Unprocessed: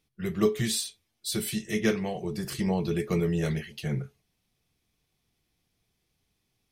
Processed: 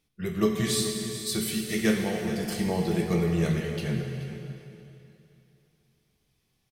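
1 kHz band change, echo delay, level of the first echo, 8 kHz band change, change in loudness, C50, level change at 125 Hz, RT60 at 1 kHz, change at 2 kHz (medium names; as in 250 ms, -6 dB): +2.0 dB, 427 ms, -13.0 dB, +2.0 dB, +1.5 dB, 3.0 dB, +2.0 dB, 2.8 s, +2.5 dB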